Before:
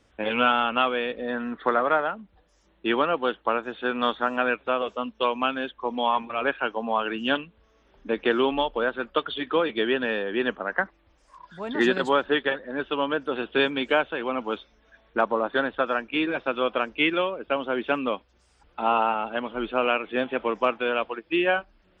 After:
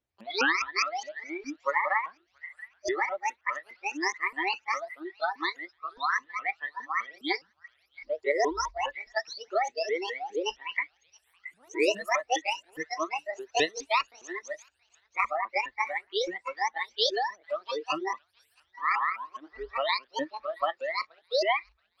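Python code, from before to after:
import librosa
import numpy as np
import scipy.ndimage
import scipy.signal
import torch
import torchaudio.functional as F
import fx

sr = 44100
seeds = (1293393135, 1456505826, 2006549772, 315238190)

y = fx.pitch_ramps(x, sr, semitones=11.0, every_ms=206)
y = fx.echo_wet_highpass(y, sr, ms=675, feedback_pct=36, hz=1700.0, wet_db=-8.5)
y = fx.noise_reduce_blind(y, sr, reduce_db=23)
y = F.gain(torch.from_numpy(y), -2.0).numpy()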